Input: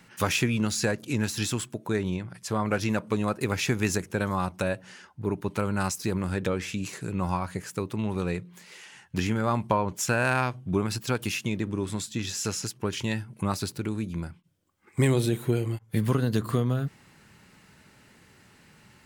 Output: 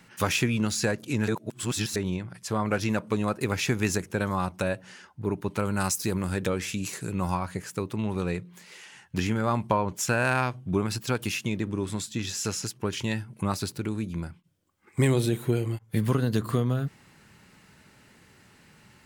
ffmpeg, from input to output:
-filter_complex "[0:a]asettb=1/sr,asplit=3[a][b][c];[a]atrim=end=5.654[d];[b]atrim=start=5.65:end=7.35,asetpts=PTS-STARTPTS,afade=t=in:d=0.004:c=qsin,afade=t=out:st=1.696:d=0.004:c=qsin,highshelf=f=6.8k:g=9[e];[c]atrim=start=7.346[f];[d][e]acrossfade=d=0.004:c1=hsin:c2=qsin[g];[g][f]acrossfade=d=0.004:c1=qsin:c2=hsin,asplit=3[h][i][j];[h]atrim=end=1.282[k];[i]atrim=start=1.278:end=1.962,asetpts=PTS-STARTPTS,areverse[l];[j]atrim=start=1.958[m];[k][l]acrossfade=d=0.004:c1=hsin:c2=hsin[n];[n][m]acrossfade=d=0.004:c1=hsin:c2=hsin"

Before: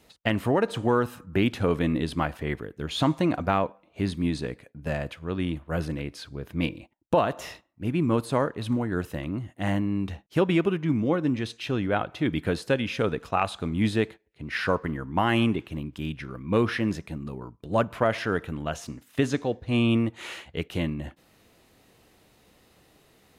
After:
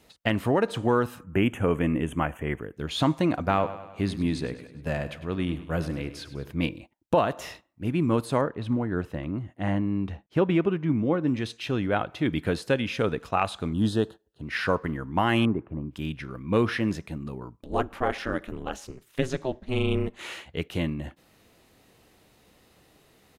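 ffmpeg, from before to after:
-filter_complex "[0:a]asettb=1/sr,asplit=3[a][b][c];[a]atrim=end=1.234[d];[b]atrim=start=1.23:end=2.74,asetpts=PTS-STARTPTS,afade=t=in:d=0.004:c=qsin,afade=t=out:st=1.506:d=0.004:c=qsin,asuperstop=centerf=4500:order=8:qfactor=1.4[e];[c]atrim=start=2.736[f];[d][e]acrossfade=d=0.004:c1=hsin:c2=qsin[g];[g][f]acrossfade=d=0.004:c1=qsin:c2=hsin,asplit=3[h][i][j];[h]afade=t=out:st=3.49:d=0.02[k];[i]aecho=1:1:101|202|303|404|505|606:0.2|0.11|0.0604|0.0332|0.0183|0.01,afade=t=in:st=3.49:d=0.02,afade=t=out:st=6.5:d=0.02[l];[j]afade=t=in:st=6.5:d=0.02[m];[k][l][m]amix=inputs=3:normalize=0,asettb=1/sr,asplit=3[n][o][p];[n]atrim=end=8.414[q];[o]atrim=start=8.41:end=11.28,asetpts=PTS-STARTPTS,afade=t=in:d=0.004:c=qsin,afade=t=out:st=2.866:d=0.004:c=qsin,lowpass=f=2k:p=1[r];[p]atrim=start=11.276[s];[q][r]acrossfade=d=0.004:c1=hsin:c2=qsin[t];[t][s]acrossfade=d=0.004:c1=qsin:c2=hsin,asettb=1/sr,asplit=3[u][v][w];[u]atrim=end=13.734[x];[v]atrim=start=13.73:end=14.42,asetpts=PTS-STARTPTS,afade=t=in:d=0.004:c=qsin,afade=t=out:st=0.686:d=0.004:c=qsin,asuperstop=centerf=2200:order=4:qfactor=1.6[y];[w]atrim=start=14.416[z];[x][y]acrossfade=d=0.004:c1=hsin:c2=qsin[aa];[aa][z]acrossfade=d=0.004:c1=qsin:c2=hsin,asettb=1/sr,asplit=3[ab][ac][ad];[ab]atrim=end=15.454[ae];[ac]atrim=start=15.45:end=15.91,asetpts=PTS-STARTPTS,afade=t=in:d=0.004:c=qsin,afade=t=out:st=0.456:d=0.004:c=qsin,lowpass=f=1.4k:w=0.5412,lowpass=f=1.4k:w=1.3066[af];[ad]atrim=start=15.906[ag];[ae][af]acrossfade=d=0.004:c1=hsin:c2=qsin[ah];[ah][ag]acrossfade=d=0.004:c1=qsin:c2=hsin,asettb=1/sr,asplit=3[ai][aj][ak];[ai]atrim=end=17.624[al];[aj]atrim=start=17.62:end=20.19,asetpts=PTS-STARTPTS,afade=t=in:d=0.004:c=qsin,afade=t=out:st=2.566:d=0.004:c=qsin,aeval=exprs='val(0)*sin(2*PI*130*n/s)':c=same[am];[ak]atrim=start=20.186[an];[al][am]acrossfade=d=0.004:c1=hsin:c2=qsin[ao];[ao][an]acrossfade=d=0.004:c1=qsin:c2=hsin"

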